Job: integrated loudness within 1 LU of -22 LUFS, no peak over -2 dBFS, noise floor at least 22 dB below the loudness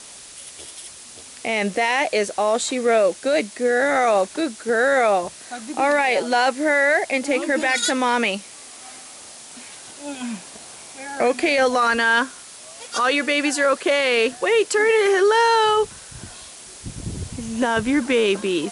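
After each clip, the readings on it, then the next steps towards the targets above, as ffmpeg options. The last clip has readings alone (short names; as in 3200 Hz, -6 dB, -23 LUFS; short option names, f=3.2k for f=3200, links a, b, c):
noise floor -41 dBFS; noise floor target -42 dBFS; loudness -19.5 LUFS; peak -6.5 dBFS; loudness target -22.0 LUFS
-> -af "afftdn=nr=6:nf=-41"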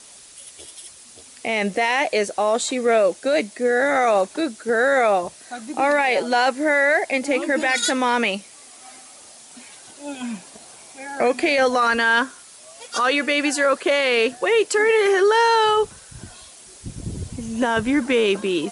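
noise floor -45 dBFS; loudness -19.5 LUFS; peak -6.5 dBFS; loudness target -22.0 LUFS
-> -af "volume=-2.5dB"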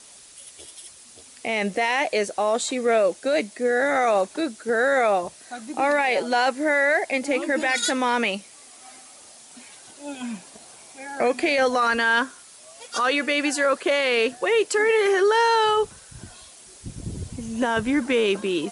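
loudness -22.0 LUFS; peak -9.0 dBFS; noise floor -48 dBFS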